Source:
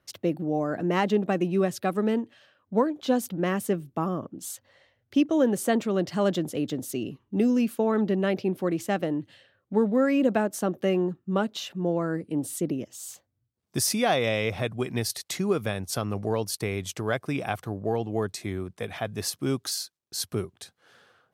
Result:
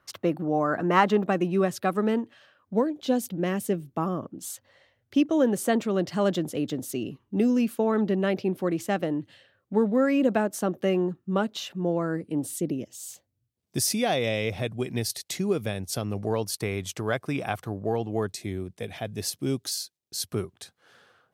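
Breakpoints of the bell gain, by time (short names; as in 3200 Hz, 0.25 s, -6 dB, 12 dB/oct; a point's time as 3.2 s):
bell 1200 Hz 1.1 oct
+10.5 dB
from 1.23 s +4 dB
from 2.74 s -6 dB
from 3.83 s +0.5 dB
from 12.51 s -7 dB
from 16.23 s 0 dB
from 18.32 s -9.5 dB
from 20.31 s +0.5 dB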